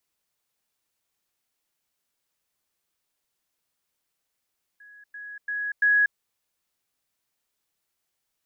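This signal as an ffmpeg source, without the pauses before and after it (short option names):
-f lavfi -i "aevalsrc='pow(10,(-46.5+10*floor(t/0.34))/20)*sin(2*PI*1670*t)*clip(min(mod(t,0.34),0.24-mod(t,0.34))/0.005,0,1)':d=1.36:s=44100"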